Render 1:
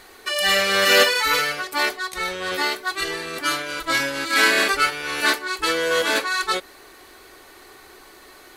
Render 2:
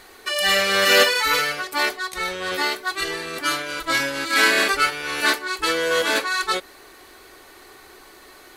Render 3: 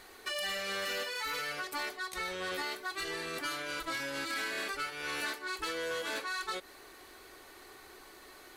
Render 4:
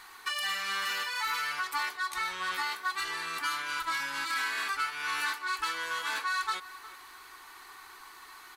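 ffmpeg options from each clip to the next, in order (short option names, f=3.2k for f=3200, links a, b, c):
-af anull
-af "acompressor=threshold=-24dB:ratio=12,asoftclip=type=tanh:threshold=-21.5dB,volume=-7dB"
-filter_complex "[0:a]lowshelf=f=750:t=q:w=3:g=-9,asplit=2[a][b];[b]adelay=360,highpass=300,lowpass=3.4k,asoftclip=type=hard:threshold=-32.5dB,volume=-15dB[c];[a][c]amix=inputs=2:normalize=0,volume=2.5dB"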